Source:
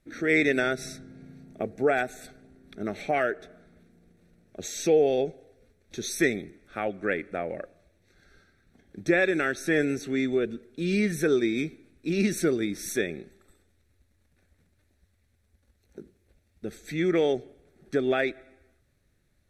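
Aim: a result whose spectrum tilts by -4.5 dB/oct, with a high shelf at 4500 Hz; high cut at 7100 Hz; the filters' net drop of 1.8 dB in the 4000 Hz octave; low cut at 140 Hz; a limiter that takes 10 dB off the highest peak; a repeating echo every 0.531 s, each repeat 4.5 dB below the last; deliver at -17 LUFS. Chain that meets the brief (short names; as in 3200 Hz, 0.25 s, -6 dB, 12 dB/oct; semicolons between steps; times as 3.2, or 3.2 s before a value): HPF 140 Hz; LPF 7100 Hz; bell 4000 Hz -4.5 dB; high shelf 4500 Hz +5.5 dB; limiter -20.5 dBFS; feedback echo 0.531 s, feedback 60%, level -4.5 dB; gain +14.5 dB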